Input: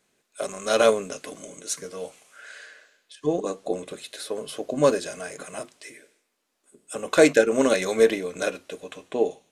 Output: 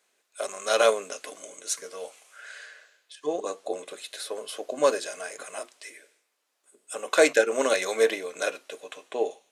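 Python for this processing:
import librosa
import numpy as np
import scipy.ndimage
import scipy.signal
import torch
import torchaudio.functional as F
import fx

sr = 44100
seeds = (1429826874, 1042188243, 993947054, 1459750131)

y = scipy.signal.sosfilt(scipy.signal.butter(2, 500.0, 'highpass', fs=sr, output='sos'), x)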